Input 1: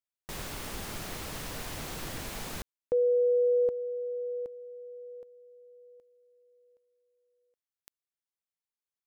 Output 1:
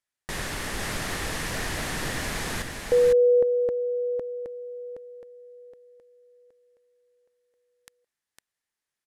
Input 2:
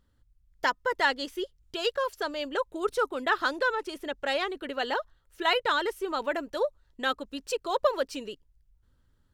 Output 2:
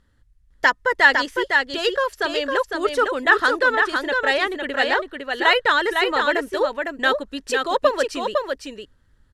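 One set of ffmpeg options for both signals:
ffmpeg -i in.wav -af "lowpass=frequency=12000:width=0.5412,lowpass=frequency=12000:width=1.3066,equalizer=frequency=1800:width_type=o:width=0.37:gain=8,aecho=1:1:506:0.596,volume=6.5dB" out.wav

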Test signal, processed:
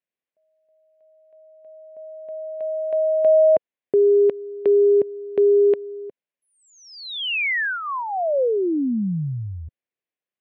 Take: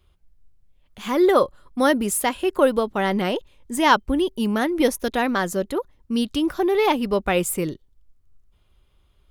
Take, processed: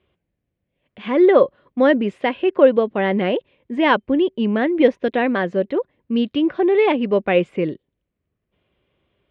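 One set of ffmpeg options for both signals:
ffmpeg -i in.wav -af "highpass=160,equalizer=frequency=520:width_type=q:width=4:gain=3,equalizer=frequency=880:width_type=q:width=4:gain=-7,equalizer=frequency=1300:width_type=q:width=4:gain=-9,lowpass=frequency=2800:width=0.5412,lowpass=frequency=2800:width=1.3066,volume=4dB" out.wav

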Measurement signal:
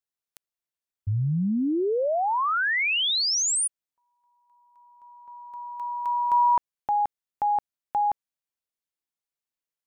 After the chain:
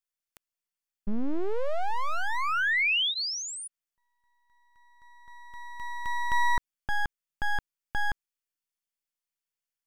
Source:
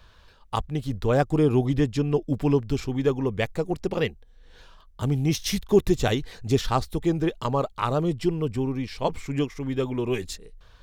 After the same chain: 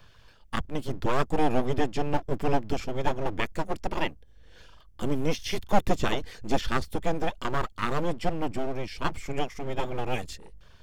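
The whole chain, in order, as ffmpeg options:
ffmpeg -i in.wav -filter_complex "[0:a]acrossover=split=4000[link_01][link_02];[link_02]acompressor=threshold=-42dB:ratio=4:attack=1:release=60[link_03];[link_01][link_03]amix=inputs=2:normalize=0,bandreject=frequency=3900:width=10,acrossover=split=1100[link_04][link_05];[link_04]aeval=exprs='abs(val(0))':channel_layout=same[link_06];[link_06][link_05]amix=inputs=2:normalize=0" out.wav

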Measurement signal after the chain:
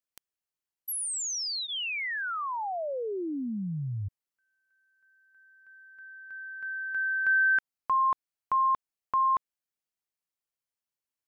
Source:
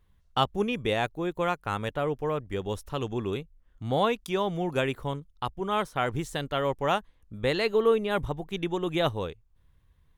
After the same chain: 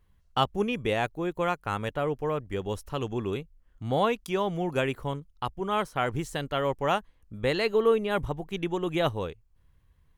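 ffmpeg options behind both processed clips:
ffmpeg -i in.wav -af "bandreject=frequency=3600:width=14" out.wav

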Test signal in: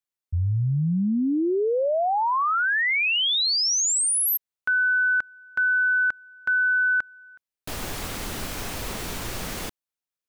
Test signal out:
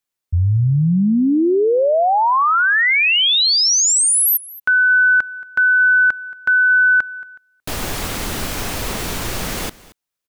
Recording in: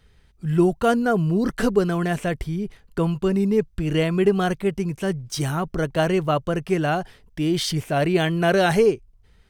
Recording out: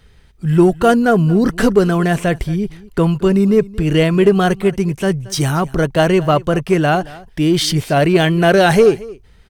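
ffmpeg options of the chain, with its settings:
ffmpeg -i in.wav -filter_complex "[0:a]asplit=2[link_01][link_02];[link_02]asoftclip=type=hard:threshold=-16dB,volume=-6.5dB[link_03];[link_01][link_03]amix=inputs=2:normalize=0,aecho=1:1:226:0.0944,volume=4.5dB" out.wav

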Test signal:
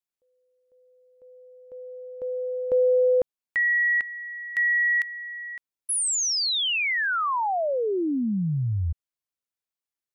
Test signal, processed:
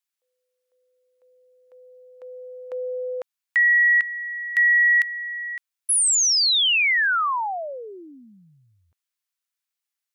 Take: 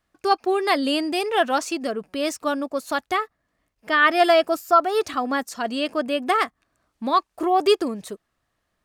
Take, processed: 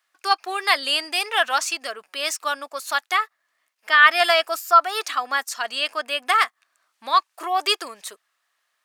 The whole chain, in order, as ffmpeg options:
ffmpeg -i in.wav -af "highpass=1200,volume=6dB" out.wav

